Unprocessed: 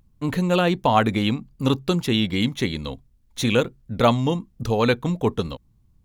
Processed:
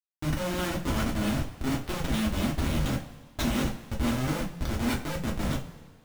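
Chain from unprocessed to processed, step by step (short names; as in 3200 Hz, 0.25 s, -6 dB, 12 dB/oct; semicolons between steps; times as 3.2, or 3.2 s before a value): HPF 120 Hz 12 dB/oct; band shelf 650 Hz -12.5 dB; reverse; compressor 5:1, threshold -37 dBFS, peak gain reduction 18 dB; reverse; Schmitt trigger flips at -38 dBFS; two-slope reverb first 0.26 s, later 1.6 s, from -18 dB, DRR -3 dB; gain +8 dB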